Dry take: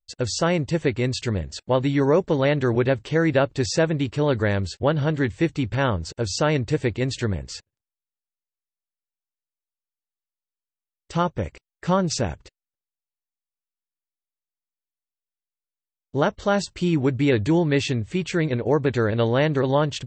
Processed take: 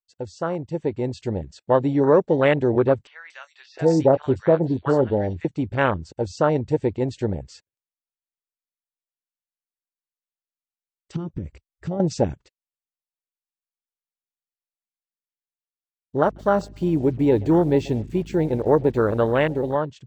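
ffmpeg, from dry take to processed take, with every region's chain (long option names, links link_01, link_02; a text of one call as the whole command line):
ffmpeg -i in.wav -filter_complex "[0:a]asettb=1/sr,asplit=3[link_01][link_02][link_03];[link_01]atrim=end=3.074[link_04];[link_02]atrim=start=3.07:end=5.45,asetpts=PTS-STARTPTS,afade=type=in:duration=0.004:curve=qsin,afade=type=out:start_time=2.376:duration=0.004:curve=qsin,asplit=2[link_05][link_06];[link_06]adelay=23,volume=-13.5dB[link_07];[link_05][link_07]amix=inputs=2:normalize=0,atrim=end_sample=104958,acrossover=split=1000|3700[link_08][link_09][link_10];[link_10]adelay=230[link_11];[link_08]adelay=700[link_12];[link_12][link_09][link_11]amix=inputs=3:normalize=0,atrim=end_sample=104958[link_13];[link_03]atrim=start=5.446[link_14];[link_04][link_13]acrossfade=duration=0.004:curve1=hsin:curve2=qsin[link_15];[link_15][link_14]acrossfade=duration=0.004:curve1=qsin:curve2=hsin,asettb=1/sr,asplit=3[link_16][link_17][link_18];[link_16]atrim=end=11.164[link_19];[link_17]atrim=start=11.16:end=12,asetpts=PTS-STARTPTS,afade=type=in:duration=0.004:curve=qsin,afade=type=out:start_time=0.836:duration=0.004:curve=qsin,lowshelf=frequency=440:gain=9,acompressor=threshold=-26dB:ratio=12:attack=3.2:release=140:knee=1:detection=peak[link_20];[link_18]atrim=start=11.996[link_21];[link_19][link_20]acrossfade=duration=0.004:curve1=hsin:curve2=qsin[link_22];[link_22][link_21]acrossfade=duration=0.004:curve1=qsin:curve2=hsin,asettb=1/sr,asplit=3[link_23][link_24][link_25];[link_23]atrim=end=16.234[link_26];[link_24]atrim=start=16.23:end=19.76,asetpts=PTS-STARTPTS,afade=type=in:duration=0.004:curve=qsin,afade=type=out:start_time=3.526:duration=0.004:curve=qsin,acrusher=bits=6:mix=0:aa=0.5,asplit=2[link_27][link_28];[link_28]adelay=128,lowpass=frequency=3000:poles=1,volume=-20dB,asplit=2[link_29][link_30];[link_30]adelay=128,lowpass=frequency=3000:poles=1,volume=0.53,asplit=2[link_31][link_32];[link_32]adelay=128,lowpass=frequency=3000:poles=1,volume=0.53,asplit=2[link_33][link_34];[link_34]adelay=128,lowpass=frequency=3000:poles=1,volume=0.53[link_35];[link_27][link_29][link_31][link_33][link_35]amix=inputs=5:normalize=0,atrim=end_sample=155673,aeval=exprs='val(0)+0.0158*(sin(2*PI*50*n/s)+sin(2*PI*2*50*n/s)/2+sin(2*PI*3*50*n/s)/3+sin(2*PI*4*50*n/s)/4+sin(2*PI*5*50*n/s)/5)':channel_layout=same[link_36];[link_25]atrim=start=19.756[link_37];[link_26][link_36]acrossfade=duration=0.004:curve1=hsin:curve2=qsin[link_38];[link_38][link_37]acrossfade=duration=0.004:curve1=qsin:curve2=hsin,afwtdn=0.0562,lowshelf=frequency=190:gain=-10,dynaudnorm=framelen=220:gausssize=9:maxgain=11.5dB,volume=-3dB" out.wav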